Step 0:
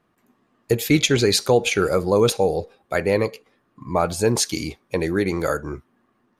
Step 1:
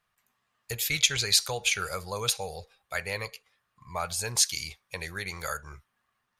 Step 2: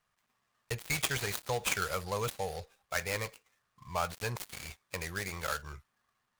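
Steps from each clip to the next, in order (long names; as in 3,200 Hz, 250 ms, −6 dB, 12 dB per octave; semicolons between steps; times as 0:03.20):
guitar amp tone stack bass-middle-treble 10-0-10
gap after every zero crossing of 0.12 ms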